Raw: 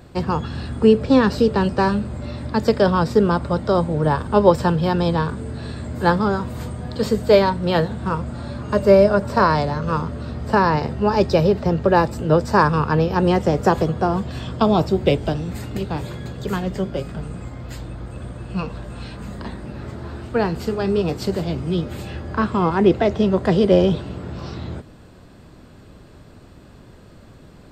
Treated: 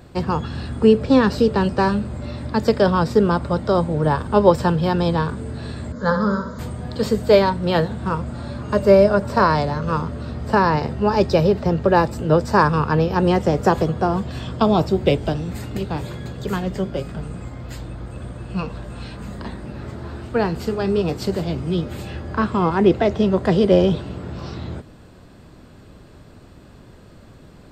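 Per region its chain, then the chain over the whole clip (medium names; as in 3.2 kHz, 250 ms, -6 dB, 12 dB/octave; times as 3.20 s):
5.92–6.59 s: brick-wall FIR low-pass 7.4 kHz + static phaser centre 520 Hz, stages 8 + flutter echo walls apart 11.3 m, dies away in 0.54 s
whole clip: none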